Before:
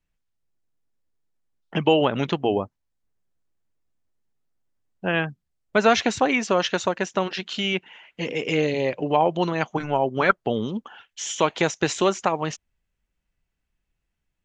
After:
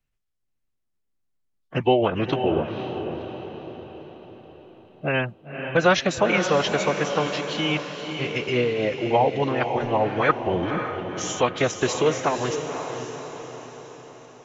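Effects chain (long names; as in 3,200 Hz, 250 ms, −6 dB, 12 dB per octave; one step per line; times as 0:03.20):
phase-vocoder pitch shift with formants kept −4 semitones
feedback delay with all-pass diffusion 525 ms, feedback 52%, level −7 dB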